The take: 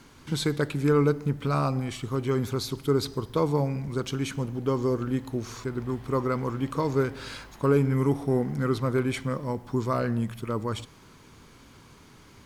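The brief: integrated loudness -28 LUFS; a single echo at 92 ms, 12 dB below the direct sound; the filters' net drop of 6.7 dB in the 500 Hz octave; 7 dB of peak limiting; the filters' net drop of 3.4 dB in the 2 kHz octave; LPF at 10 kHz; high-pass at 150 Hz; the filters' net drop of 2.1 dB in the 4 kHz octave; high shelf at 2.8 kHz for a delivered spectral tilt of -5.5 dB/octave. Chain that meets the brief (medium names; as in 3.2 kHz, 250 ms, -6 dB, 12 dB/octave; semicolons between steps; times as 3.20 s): high-pass 150 Hz; low-pass 10 kHz; peaking EQ 500 Hz -8.5 dB; peaking EQ 2 kHz -5.5 dB; treble shelf 2.8 kHz +8 dB; peaking EQ 4 kHz -7.5 dB; peak limiter -21.5 dBFS; delay 92 ms -12 dB; trim +5.5 dB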